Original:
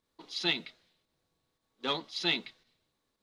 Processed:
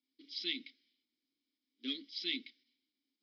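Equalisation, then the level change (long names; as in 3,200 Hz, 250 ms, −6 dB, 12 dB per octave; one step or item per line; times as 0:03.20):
formant filter i
low-pass with resonance 5,100 Hz, resonance Q 10
phaser with its sweep stopped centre 320 Hz, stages 4
+2.5 dB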